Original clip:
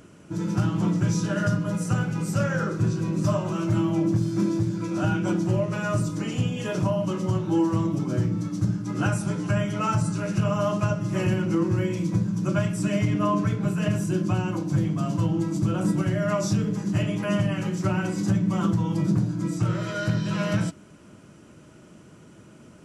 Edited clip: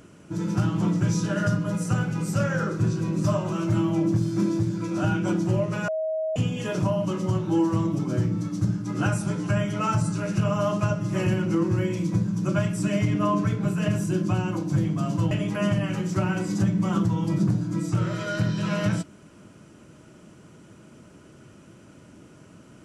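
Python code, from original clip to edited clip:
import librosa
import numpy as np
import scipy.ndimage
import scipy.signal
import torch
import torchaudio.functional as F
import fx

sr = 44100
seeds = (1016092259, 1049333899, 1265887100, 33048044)

y = fx.edit(x, sr, fx.bleep(start_s=5.88, length_s=0.48, hz=634.0, db=-24.0),
    fx.cut(start_s=15.31, length_s=1.68), tone=tone)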